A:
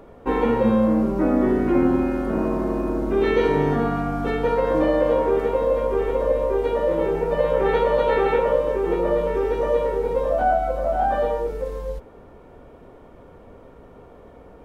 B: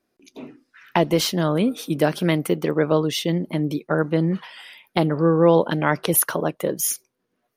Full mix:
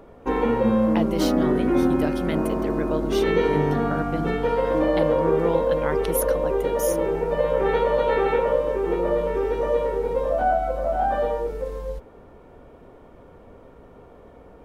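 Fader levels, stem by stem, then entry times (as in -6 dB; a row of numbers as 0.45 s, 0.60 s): -1.5 dB, -9.0 dB; 0.00 s, 0.00 s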